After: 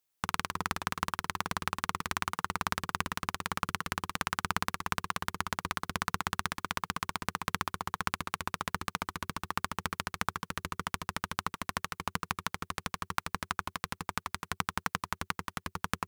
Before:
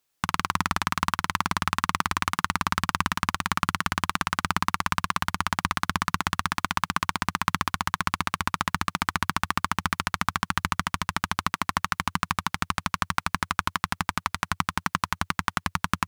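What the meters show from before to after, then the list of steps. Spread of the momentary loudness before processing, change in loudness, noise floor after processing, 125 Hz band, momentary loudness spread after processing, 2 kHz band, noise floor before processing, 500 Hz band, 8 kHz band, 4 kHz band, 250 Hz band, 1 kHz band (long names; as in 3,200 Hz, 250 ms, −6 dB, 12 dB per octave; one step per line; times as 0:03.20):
2 LU, −8.0 dB, −80 dBFS, −8.5 dB, 4 LU, −8.0 dB, −75 dBFS, −3.0 dB, −6.5 dB, −7.5 dB, −8.5 dB, −8.5 dB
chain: high-shelf EQ 9,300 Hz +5.5 dB
amplitude modulation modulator 290 Hz, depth 60%
level −5 dB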